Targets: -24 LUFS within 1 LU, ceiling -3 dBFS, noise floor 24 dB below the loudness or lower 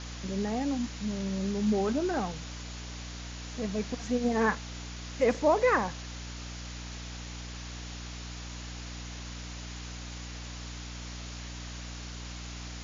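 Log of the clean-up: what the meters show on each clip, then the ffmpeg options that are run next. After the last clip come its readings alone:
hum 60 Hz; harmonics up to 300 Hz; hum level -39 dBFS; noise floor -41 dBFS; noise floor target -58 dBFS; loudness -33.5 LUFS; peak -14.0 dBFS; loudness target -24.0 LUFS
-> -af "bandreject=f=60:t=h:w=4,bandreject=f=120:t=h:w=4,bandreject=f=180:t=h:w=4,bandreject=f=240:t=h:w=4,bandreject=f=300:t=h:w=4"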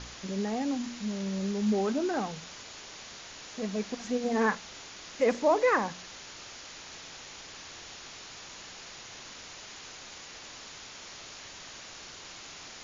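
hum none; noise floor -47 dBFS; noise floor target -58 dBFS
-> -af "afftdn=nr=11:nf=-47"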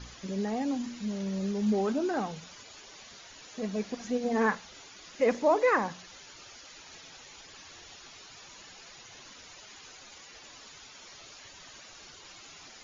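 noise floor -51 dBFS; noise floor target -54 dBFS
-> -af "afftdn=nr=6:nf=-51"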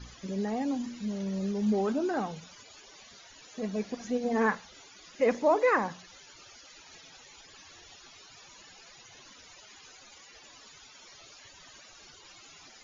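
noise floor -54 dBFS; loudness -30.0 LUFS; peak -14.0 dBFS; loudness target -24.0 LUFS
-> -af "volume=6dB"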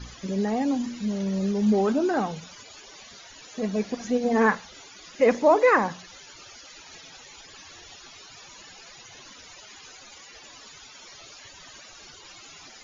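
loudness -24.0 LUFS; peak -8.0 dBFS; noise floor -48 dBFS

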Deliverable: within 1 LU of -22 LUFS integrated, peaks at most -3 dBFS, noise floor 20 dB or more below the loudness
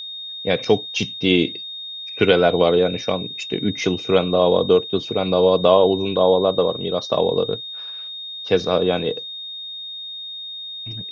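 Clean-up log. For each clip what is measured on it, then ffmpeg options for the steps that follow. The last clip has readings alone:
steady tone 3700 Hz; tone level -30 dBFS; loudness -20.5 LUFS; peak -1.5 dBFS; loudness target -22.0 LUFS
-> -af "bandreject=f=3.7k:w=30"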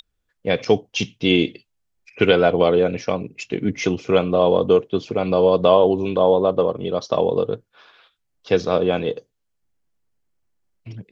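steady tone none; loudness -19.5 LUFS; peak -1.5 dBFS; loudness target -22.0 LUFS
-> -af "volume=-2.5dB"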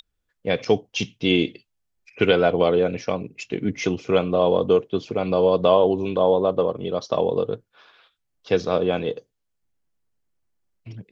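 loudness -22.0 LUFS; peak -4.0 dBFS; noise floor -76 dBFS

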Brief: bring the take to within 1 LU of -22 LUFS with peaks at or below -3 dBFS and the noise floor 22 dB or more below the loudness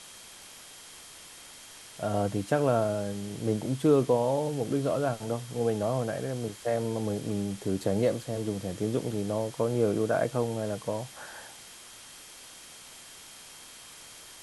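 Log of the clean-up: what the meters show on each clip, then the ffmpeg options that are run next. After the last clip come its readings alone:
steady tone 3200 Hz; tone level -57 dBFS; noise floor -49 dBFS; noise floor target -52 dBFS; loudness -29.5 LUFS; peak -11.5 dBFS; loudness target -22.0 LUFS
-> -af "bandreject=f=3.2k:w=30"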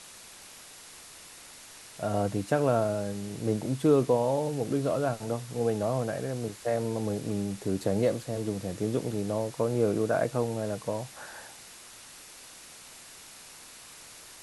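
steady tone none; noise floor -49 dBFS; noise floor target -52 dBFS
-> -af "afftdn=nr=6:nf=-49"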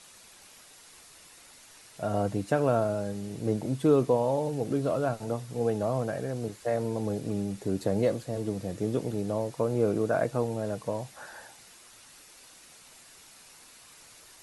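noise floor -54 dBFS; loudness -29.5 LUFS; peak -11.5 dBFS; loudness target -22.0 LUFS
-> -af "volume=7.5dB"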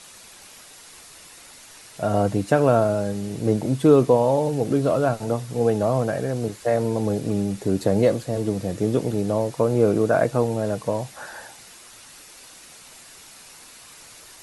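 loudness -22.0 LUFS; peak -4.0 dBFS; noise floor -46 dBFS

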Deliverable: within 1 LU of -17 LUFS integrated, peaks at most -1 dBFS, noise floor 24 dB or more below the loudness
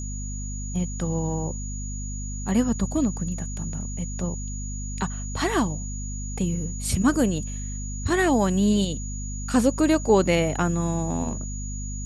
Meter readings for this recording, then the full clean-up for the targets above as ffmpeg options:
hum 50 Hz; harmonics up to 250 Hz; hum level -29 dBFS; steady tone 6800 Hz; tone level -37 dBFS; loudness -25.5 LUFS; peak -7.0 dBFS; loudness target -17.0 LUFS
-> -af "bandreject=f=50:t=h:w=6,bandreject=f=100:t=h:w=6,bandreject=f=150:t=h:w=6,bandreject=f=200:t=h:w=6,bandreject=f=250:t=h:w=6"
-af "bandreject=f=6.8k:w=30"
-af "volume=8.5dB,alimiter=limit=-1dB:level=0:latency=1"

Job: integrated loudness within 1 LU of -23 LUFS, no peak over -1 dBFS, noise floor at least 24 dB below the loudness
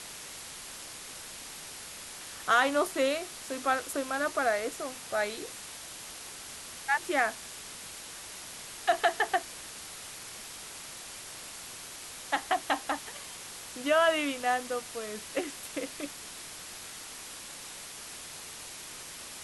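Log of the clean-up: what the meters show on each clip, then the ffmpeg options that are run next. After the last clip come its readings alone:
noise floor -45 dBFS; noise floor target -58 dBFS; loudness -33.5 LUFS; peak -12.0 dBFS; loudness target -23.0 LUFS
-> -af "afftdn=nr=13:nf=-45"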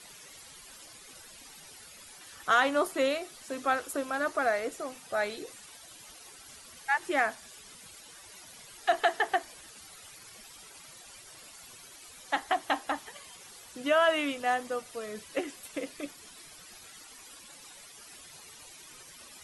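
noise floor -51 dBFS; noise floor target -55 dBFS
-> -af "afftdn=nr=6:nf=-51"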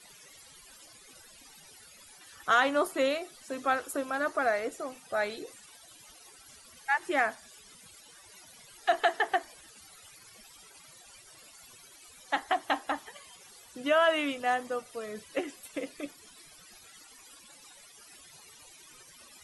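noise floor -55 dBFS; loudness -30.5 LUFS; peak -12.5 dBFS; loudness target -23.0 LUFS
-> -af "volume=7.5dB"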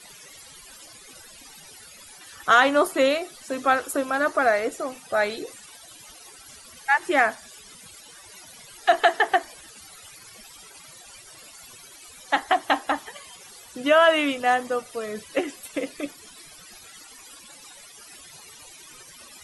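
loudness -23.0 LUFS; peak -5.0 dBFS; noise floor -47 dBFS

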